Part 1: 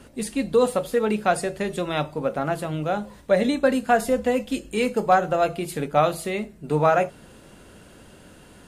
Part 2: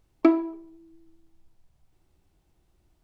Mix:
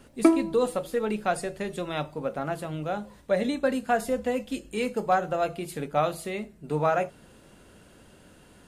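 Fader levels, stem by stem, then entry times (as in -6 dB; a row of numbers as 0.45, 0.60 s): -5.5, 0.0 dB; 0.00, 0.00 s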